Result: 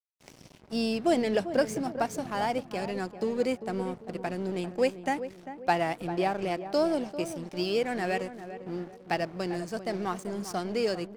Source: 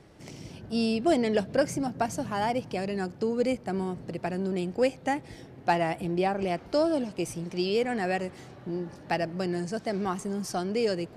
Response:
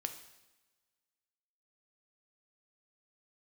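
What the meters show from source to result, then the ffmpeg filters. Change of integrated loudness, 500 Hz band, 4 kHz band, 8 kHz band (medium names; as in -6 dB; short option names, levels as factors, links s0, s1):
-1.5 dB, -1.0 dB, -0.5 dB, -2.5 dB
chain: -filter_complex "[0:a]lowshelf=f=100:g=-10,aeval=exprs='sgn(val(0))*max(abs(val(0))-0.00562,0)':c=same,asplit=2[s0][s1];[s1]adelay=396,lowpass=f=1100:p=1,volume=0.299,asplit=2[s2][s3];[s3]adelay=396,lowpass=f=1100:p=1,volume=0.43,asplit=2[s4][s5];[s5]adelay=396,lowpass=f=1100:p=1,volume=0.43,asplit=2[s6][s7];[s7]adelay=396,lowpass=f=1100:p=1,volume=0.43,asplit=2[s8][s9];[s9]adelay=396,lowpass=f=1100:p=1,volume=0.43[s10];[s2][s4][s6][s8][s10]amix=inputs=5:normalize=0[s11];[s0][s11]amix=inputs=2:normalize=0"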